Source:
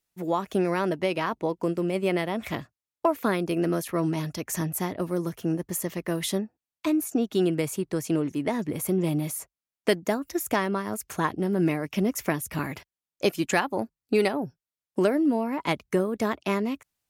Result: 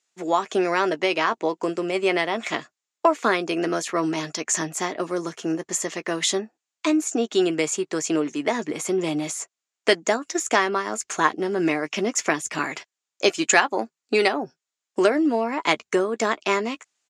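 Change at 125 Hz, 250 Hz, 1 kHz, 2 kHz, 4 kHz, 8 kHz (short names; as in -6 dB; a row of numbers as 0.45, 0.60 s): -7.5, +0.5, +6.5, +8.5, +8.5, +9.0 dB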